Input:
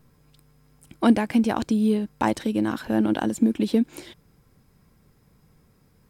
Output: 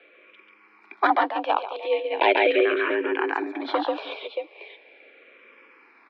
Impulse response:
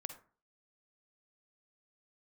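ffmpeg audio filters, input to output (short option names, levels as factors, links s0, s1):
-filter_complex "[0:a]acrusher=bits=10:mix=0:aa=0.000001,equalizer=f=2300:t=o:w=0.21:g=13.5,aecho=1:1:139|628:0.668|0.178,asplit=3[s0][s1][s2];[s0]afade=t=out:st=1.06:d=0.02[s3];[s1]agate=range=0.0224:threshold=0.2:ratio=3:detection=peak,afade=t=in:st=1.06:d=0.02,afade=t=out:st=2.1:d=0.02[s4];[s2]afade=t=in:st=2.1:d=0.02[s5];[s3][s4][s5]amix=inputs=3:normalize=0,asettb=1/sr,asplit=3[s6][s7][s8];[s6]atrim=end=2.624[s9];[s7]atrim=start=2.62:end=3.65,asetpts=PTS-STARTPTS,afade=t=in:d=0.004:c=qsin,afade=t=out:st=1.026:d=0.004:c=qsin,acompressor=threshold=0.0794:ratio=12[s10];[s8]atrim=start=3.646[s11];[s9][s10]acrossfade=d=0.004:c1=hsin:c2=qsin[s12];[s12][s11]acrossfade=d=0.004:c1=qsin:c2=hsin,aeval=exprs='0.841*sin(PI/2*3.98*val(0)/0.841)':c=same,highpass=f=370:t=q:w=0.5412,highpass=f=370:t=q:w=1.307,lowpass=f=3400:t=q:w=0.5176,lowpass=f=3400:t=q:w=0.7071,lowpass=f=3400:t=q:w=1.932,afreqshift=64,dynaudnorm=f=430:g=7:m=3.76,asplit=2[s13][s14];[s14]afreqshift=-0.39[s15];[s13][s15]amix=inputs=2:normalize=1,volume=0.75"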